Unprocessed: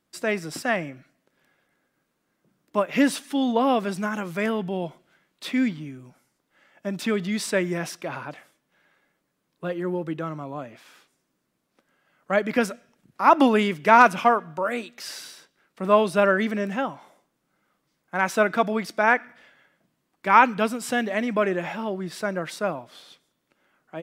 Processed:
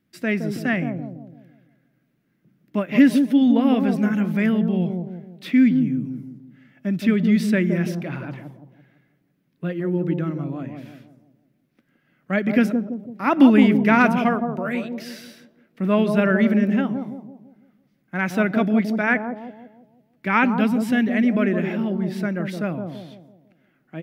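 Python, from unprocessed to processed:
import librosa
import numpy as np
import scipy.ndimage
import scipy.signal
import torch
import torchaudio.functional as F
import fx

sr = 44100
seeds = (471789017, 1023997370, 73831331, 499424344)

p1 = fx.graphic_eq(x, sr, hz=(125, 250, 500, 1000, 2000, 4000, 8000), db=(8, 6, -4, -10, 4, -3, -11))
p2 = p1 + fx.echo_bbd(p1, sr, ms=167, stages=1024, feedback_pct=43, wet_db=-5.0, dry=0)
y = p2 * librosa.db_to_amplitude(1.5)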